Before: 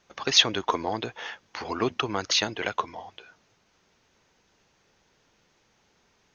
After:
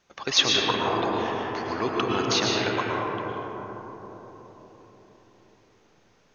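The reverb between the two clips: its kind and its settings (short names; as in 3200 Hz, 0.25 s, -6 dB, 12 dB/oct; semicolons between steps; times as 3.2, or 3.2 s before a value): digital reverb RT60 4.6 s, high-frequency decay 0.25×, pre-delay 75 ms, DRR -3.5 dB; gain -2 dB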